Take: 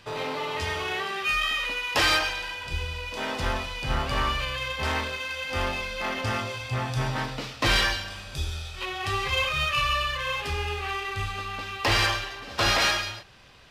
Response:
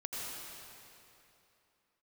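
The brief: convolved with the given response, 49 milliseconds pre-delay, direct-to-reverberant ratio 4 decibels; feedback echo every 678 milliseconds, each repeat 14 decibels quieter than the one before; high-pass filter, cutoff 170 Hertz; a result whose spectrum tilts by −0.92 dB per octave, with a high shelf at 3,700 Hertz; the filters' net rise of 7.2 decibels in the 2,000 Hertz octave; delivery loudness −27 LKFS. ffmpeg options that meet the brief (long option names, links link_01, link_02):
-filter_complex "[0:a]highpass=170,equalizer=frequency=2000:width_type=o:gain=7,highshelf=frequency=3700:gain=7,aecho=1:1:678|1356:0.2|0.0399,asplit=2[link_01][link_02];[1:a]atrim=start_sample=2205,adelay=49[link_03];[link_02][link_03]afir=irnorm=-1:irlink=0,volume=-6dB[link_04];[link_01][link_04]amix=inputs=2:normalize=0,volume=-7dB"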